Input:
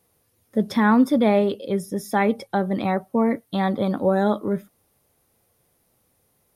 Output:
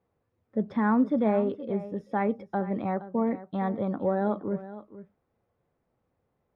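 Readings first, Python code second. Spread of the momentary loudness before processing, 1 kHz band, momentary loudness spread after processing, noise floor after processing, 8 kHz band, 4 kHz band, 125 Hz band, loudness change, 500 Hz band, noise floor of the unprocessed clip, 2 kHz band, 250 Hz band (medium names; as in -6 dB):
9 LU, -6.5 dB, 9 LU, -78 dBFS, under -35 dB, under -20 dB, -6.5 dB, -6.5 dB, -6.5 dB, -67 dBFS, -10.0 dB, -6.5 dB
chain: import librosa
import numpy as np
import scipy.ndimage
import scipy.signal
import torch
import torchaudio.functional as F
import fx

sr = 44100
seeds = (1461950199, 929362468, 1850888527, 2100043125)

p1 = scipy.signal.sosfilt(scipy.signal.butter(2, 1600.0, 'lowpass', fs=sr, output='sos'), x)
p2 = p1 + fx.echo_single(p1, sr, ms=469, db=-15.0, dry=0)
y = p2 * librosa.db_to_amplitude(-6.5)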